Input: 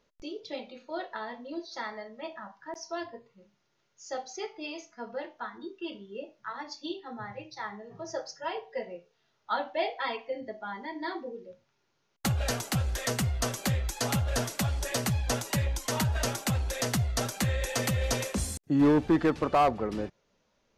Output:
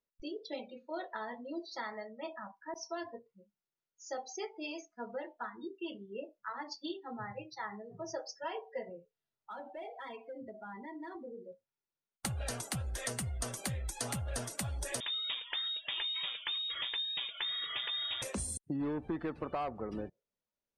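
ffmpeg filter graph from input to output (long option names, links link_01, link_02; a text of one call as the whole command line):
ffmpeg -i in.wav -filter_complex "[0:a]asettb=1/sr,asplit=3[link_01][link_02][link_03];[link_01]atrim=end=8.894[link_04];[link_02]atrim=start=8.89:end=11.38,asetpts=PTS-STARTPTS,afade=type=in:duration=0.004:curve=qsin,afade=type=out:start_time=2.486:duration=0.004:curve=qsin,lowshelf=frequency=320:gain=7,acompressor=threshold=-43dB:ratio=2.5:attack=3.2:release=140:knee=1:detection=peak,asoftclip=type=hard:threshold=-38dB[link_05];[link_03]atrim=start=11.376[link_06];[link_04][link_05]acrossfade=duration=0.004:curve1=hsin:curve2=qsin[link_07];[link_07][link_06]acrossfade=duration=0.004:curve1=qsin:curve2=hsin,asettb=1/sr,asplit=3[link_08][link_09][link_10];[link_08]atrim=end=15.004[link_11];[link_09]atrim=start=15:end=18.22,asetpts=PTS-STARTPTS,afade=type=in:duration=0.004:curve=qsin,afade=type=out:start_time=3.216:duration=0.004:curve=qsin,highpass=47,lowpass=frequency=3200:width_type=q:width=0.5098,lowpass=frequency=3200:width_type=q:width=0.6013,lowpass=frequency=3200:width_type=q:width=0.9,lowpass=frequency=3200:width_type=q:width=2.563,afreqshift=-3800[link_12];[link_10]atrim=start=18.216[link_13];[link_11][link_12]acrossfade=duration=0.004:curve1=hsin:curve2=qsin[link_14];[link_14][link_13]acrossfade=duration=0.004:curve1=qsin:curve2=hsin,afftdn=noise_reduction=22:noise_floor=-46,equalizer=frequency=9100:width=4.3:gain=14,acompressor=threshold=-33dB:ratio=5,volume=-2dB" out.wav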